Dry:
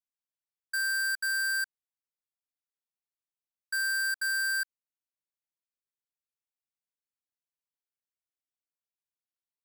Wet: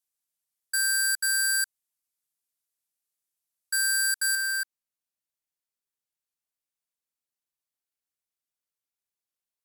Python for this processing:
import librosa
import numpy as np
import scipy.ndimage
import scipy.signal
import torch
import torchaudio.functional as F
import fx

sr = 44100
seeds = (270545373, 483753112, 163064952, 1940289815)

y = fx.peak_eq(x, sr, hz=11000.0, db=fx.steps((0.0, 13.5), (4.35, 5.0)), octaves=1.9)